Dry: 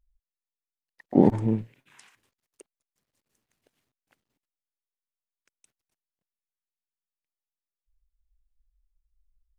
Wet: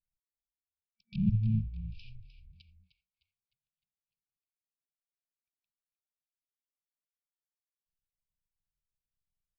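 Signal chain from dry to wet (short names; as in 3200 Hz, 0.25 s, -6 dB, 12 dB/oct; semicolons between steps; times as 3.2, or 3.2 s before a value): half-waves squared off; reverse; compressor 5:1, threshold -22 dBFS, peak gain reduction 12.5 dB; reverse; treble ducked by the level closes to 610 Hz, closed at -28.5 dBFS; gate -54 dBFS, range -27 dB; downsampling 11025 Hz; FFT band-reject 220–2300 Hz; frequency-shifting echo 0.305 s, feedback 43%, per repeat -48 Hz, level -11.5 dB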